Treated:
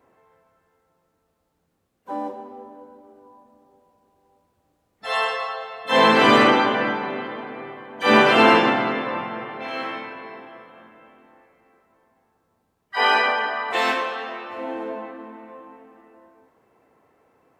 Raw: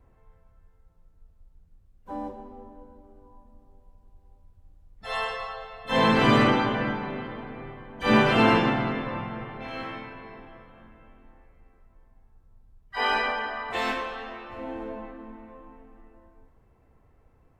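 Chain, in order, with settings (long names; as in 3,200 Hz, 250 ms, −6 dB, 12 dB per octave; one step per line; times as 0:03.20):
high-pass filter 300 Hz 12 dB per octave
level +7 dB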